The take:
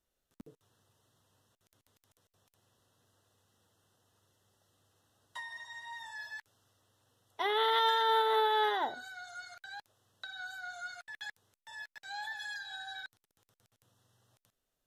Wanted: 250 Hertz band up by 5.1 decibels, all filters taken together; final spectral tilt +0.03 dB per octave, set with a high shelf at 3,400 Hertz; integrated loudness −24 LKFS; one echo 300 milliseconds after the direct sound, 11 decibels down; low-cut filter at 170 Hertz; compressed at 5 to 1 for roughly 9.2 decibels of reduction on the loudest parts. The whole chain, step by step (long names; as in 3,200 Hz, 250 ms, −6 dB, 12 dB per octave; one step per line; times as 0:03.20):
high-pass filter 170 Hz
parametric band 250 Hz +8.5 dB
high-shelf EQ 3,400 Hz +8.5 dB
downward compressor 5 to 1, threshold −33 dBFS
single-tap delay 300 ms −11 dB
level +15 dB